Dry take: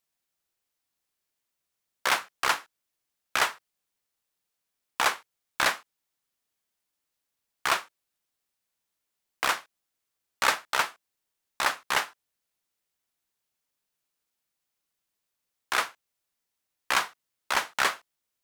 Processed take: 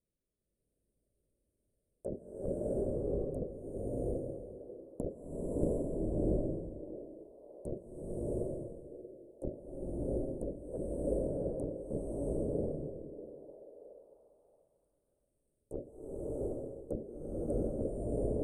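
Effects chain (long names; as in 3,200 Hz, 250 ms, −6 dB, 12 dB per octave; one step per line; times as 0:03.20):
pitch shifter swept by a sawtooth +3.5 semitones, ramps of 453 ms
treble cut that deepens with the level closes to 620 Hz, closed at −24 dBFS
Chebyshev band-stop filter 590–8,800 Hz, order 5
low-shelf EQ 99 Hz +11 dB
treble cut that deepens with the level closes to 410 Hz, closed at −42 dBFS
high-frequency loss of the air 100 metres
echo through a band-pass that steps 633 ms, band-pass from 390 Hz, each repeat 0.7 octaves, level −11 dB
slow-attack reverb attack 720 ms, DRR −8.5 dB
level +6.5 dB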